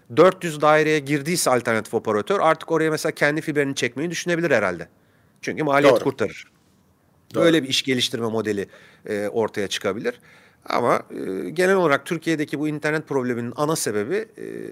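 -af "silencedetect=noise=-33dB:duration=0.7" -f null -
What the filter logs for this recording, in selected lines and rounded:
silence_start: 6.42
silence_end: 7.31 | silence_duration: 0.88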